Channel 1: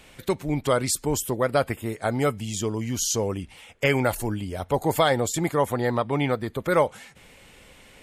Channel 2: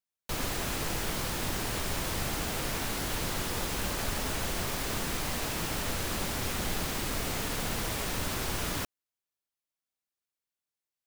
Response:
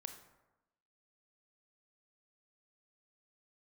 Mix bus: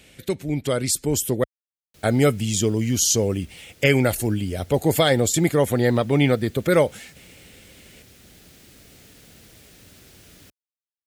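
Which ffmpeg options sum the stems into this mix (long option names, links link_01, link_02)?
-filter_complex "[0:a]dynaudnorm=framelen=210:gausssize=13:maxgain=11.5dB,volume=1.5dB,asplit=3[link_01][link_02][link_03];[link_01]atrim=end=1.44,asetpts=PTS-STARTPTS,afade=type=out:start_time=1.436:duration=0.004:curve=hsin[link_04];[link_02]atrim=start=1.44:end=2.03,asetpts=PTS-STARTPTS,volume=0[link_05];[link_03]atrim=start=2.03,asetpts=PTS-STARTPTS,afade=type=in:duration=0.004:curve=hsin[link_06];[link_04][link_05][link_06]concat=n=3:v=0:a=1[link_07];[1:a]adelay=1650,volume=-17.5dB[link_08];[link_07][link_08]amix=inputs=2:normalize=0,dynaudnorm=framelen=120:gausssize=21:maxgain=3dB,highpass=52,equalizer=frequency=1000:width_type=o:width=0.98:gain=-13"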